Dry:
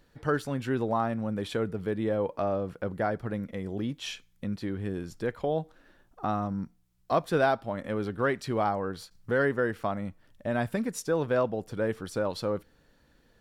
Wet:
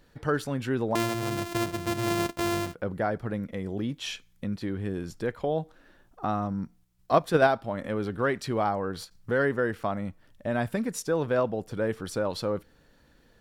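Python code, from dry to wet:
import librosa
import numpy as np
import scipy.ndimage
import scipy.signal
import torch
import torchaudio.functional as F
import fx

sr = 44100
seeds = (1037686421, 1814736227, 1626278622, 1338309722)

p1 = fx.sample_sort(x, sr, block=128, at=(0.95, 2.74))
p2 = fx.level_steps(p1, sr, step_db=23)
y = p1 + F.gain(torch.from_numpy(p2), -2.0).numpy()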